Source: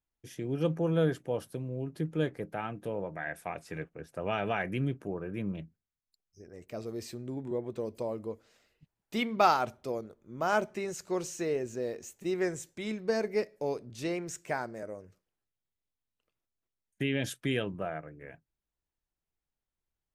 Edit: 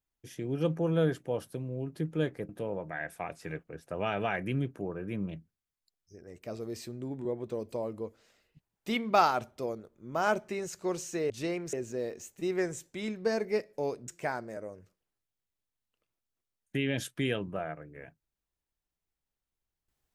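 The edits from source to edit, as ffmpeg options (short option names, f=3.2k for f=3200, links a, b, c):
-filter_complex "[0:a]asplit=5[a][b][c][d][e];[a]atrim=end=2.492[f];[b]atrim=start=2.748:end=11.562[g];[c]atrim=start=13.908:end=14.342[h];[d]atrim=start=11.558:end=13.912[i];[e]atrim=start=14.338[j];[f][g]acrossfade=d=0.004:c1=hsin:c2=hsin[k];[k][h]acrossfade=d=0.004:c1=hsin:c2=hsin[l];[l][i]acrossfade=d=0.004:c1=hsin:c2=hsin[m];[m][j]acrossfade=d=0.004:c1=hsin:c2=hsin"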